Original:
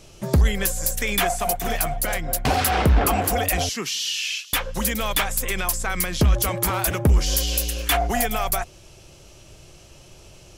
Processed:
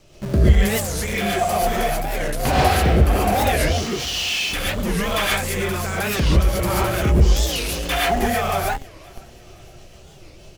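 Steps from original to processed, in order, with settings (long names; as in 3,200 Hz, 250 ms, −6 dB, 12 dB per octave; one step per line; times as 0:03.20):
low-pass filter 4,000 Hz 6 dB per octave
surface crackle 520 per second −47 dBFS
rotating-speaker cabinet horn 1.1 Hz, later 6.3 Hz, at 0:06.28
on a send: repeating echo 520 ms, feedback 49%, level −23 dB
on the sum: reverb whose tail is shaped and stops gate 160 ms rising, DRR −6 dB
in parallel at −11 dB: comparator with hysteresis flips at −29 dBFS
on the sum: wow of a warped record 45 rpm, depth 250 cents
level −2 dB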